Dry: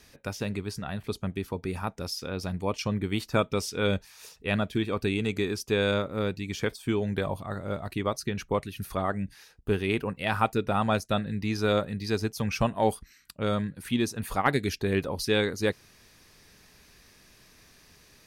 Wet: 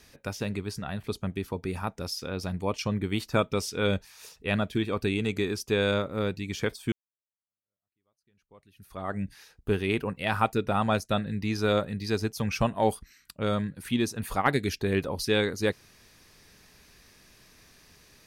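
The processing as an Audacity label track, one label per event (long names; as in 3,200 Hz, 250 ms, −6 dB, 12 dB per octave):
6.920000	9.180000	fade in exponential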